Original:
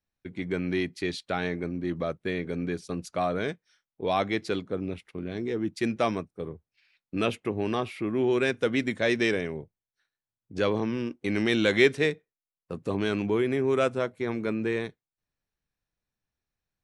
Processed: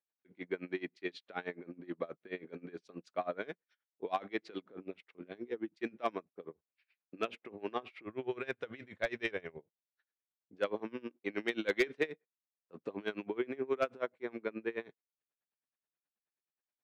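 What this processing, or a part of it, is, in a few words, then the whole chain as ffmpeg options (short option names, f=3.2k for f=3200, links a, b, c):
helicopter radio: -filter_complex "[0:a]highpass=310,lowpass=2.9k,aeval=exprs='val(0)*pow(10,-24*(0.5-0.5*cos(2*PI*9.4*n/s))/20)':c=same,asoftclip=type=hard:threshold=-18dB,asplit=3[a][b][c];[a]afade=t=out:st=8.05:d=0.02[d];[b]asubboost=boost=11.5:cutoff=74,afade=t=in:st=8.05:d=0.02,afade=t=out:st=9.58:d=0.02[e];[c]afade=t=in:st=9.58:d=0.02[f];[d][e][f]amix=inputs=3:normalize=0,volume=-3dB"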